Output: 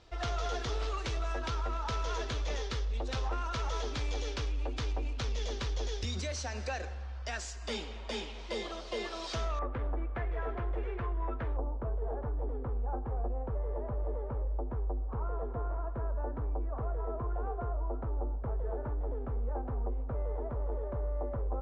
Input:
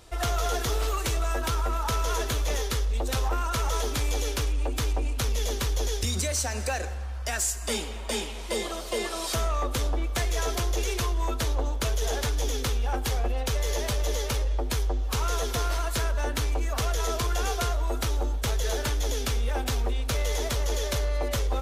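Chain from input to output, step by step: low-pass 5.5 kHz 24 dB/octave, from 9.59 s 1.9 kHz, from 11.57 s 1.1 kHz; trim -7 dB

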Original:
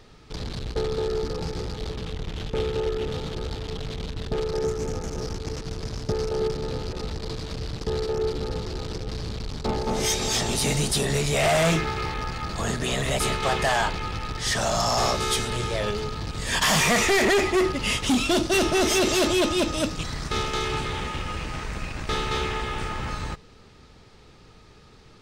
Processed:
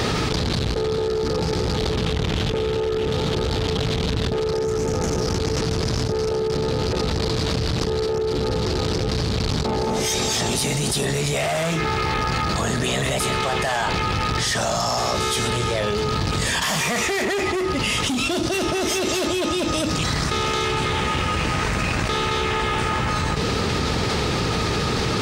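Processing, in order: high-pass 67 Hz; level flattener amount 100%; trim -4 dB

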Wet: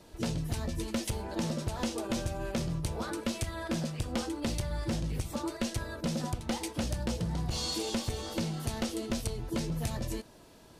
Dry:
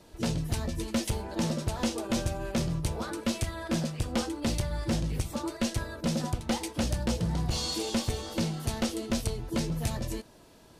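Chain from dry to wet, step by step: compression, threshold -29 dBFS, peak gain reduction 5 dB

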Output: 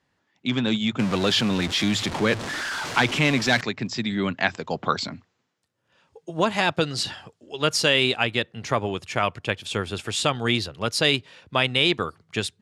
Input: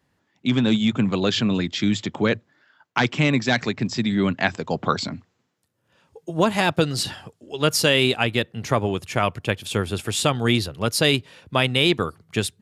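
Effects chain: 0.99–3.61 s: jump at every zero crossing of -22.5 dBFS; low-pass 7.3 kHz 12 dB/octave; bass shelf 480 Hz -6 dB

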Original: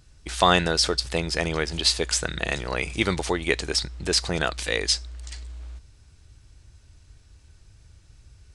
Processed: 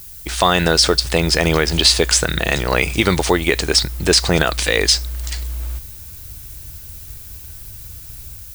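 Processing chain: level rider gain up to 5.5 dB; peak limiter -9 dBFS, peak gain reduction 6.5 dB; added noise violet -45 dBFS; trim +7.5 dB

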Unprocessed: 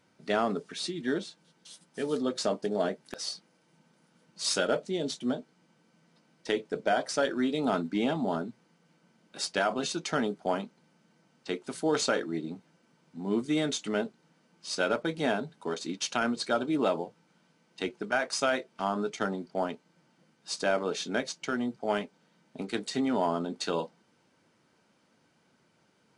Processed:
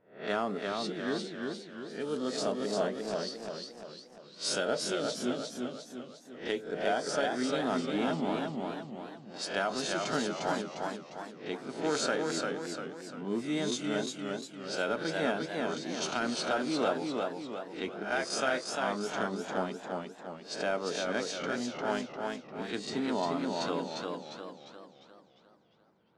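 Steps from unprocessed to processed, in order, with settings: reverse spectral sustain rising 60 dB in 0.44 s; level-controlled noise filter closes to 1.3 kHz, open at -25.5 dBFS; modulated delay 350 ms, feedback 48%, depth 90 cents, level -3.5 dB; trim -5 dB

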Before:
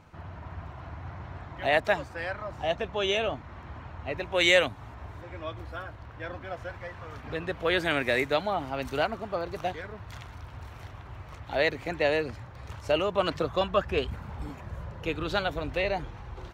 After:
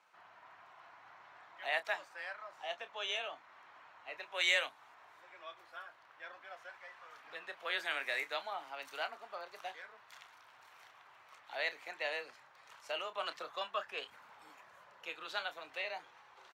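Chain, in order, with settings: frequency shift +14 Hz; high-pass 920 Hz 12 dB/octave; doubling 29 ms -12 dB; trim -8 dB

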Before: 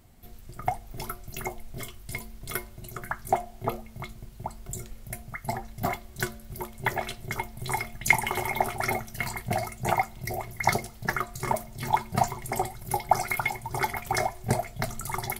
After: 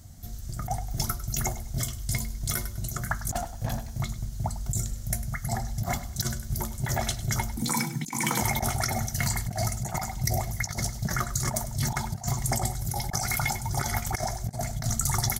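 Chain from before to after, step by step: 3.30–3.98 s: comb filter that takes the minimum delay 1.2 ms; fifteen-band graphic EQ 400 Hz -12 dB, 1 kHz -7 dB, 2.5 kHz -10 dB, 6.3 kHz +10 dB; 7.56–8.41 s: frequency shift +110 Hz; high-pass 53 Hz; bass shelf 120 Hz +11.5 dB; hum notches 60/120/180/240 Hz; feedback delay 101 ms, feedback 29%, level -15.5 dB; compressor with a negative ratio -31 dBFS, ratio -0.5; trim +4.5 dB

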